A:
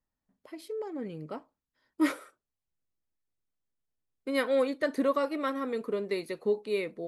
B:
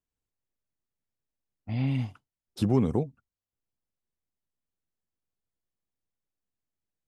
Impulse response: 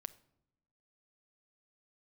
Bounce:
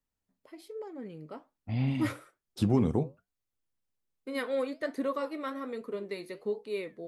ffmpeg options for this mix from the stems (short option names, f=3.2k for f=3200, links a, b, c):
-filter_complex "[0:a]volume=-0.5dB[a];[1:a]volume=3dB[b];[a][b]amix=inputs=2:normalize=0,flanger=delay=7.2:depth=5.3:regen=-74:speed=1.2:shape=sinusoidal"